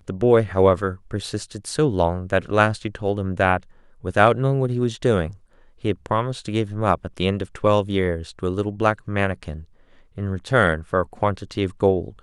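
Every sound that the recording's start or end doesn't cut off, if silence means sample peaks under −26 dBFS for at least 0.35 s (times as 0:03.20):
0:04.05–0:05.28
0:05.85–0:09.56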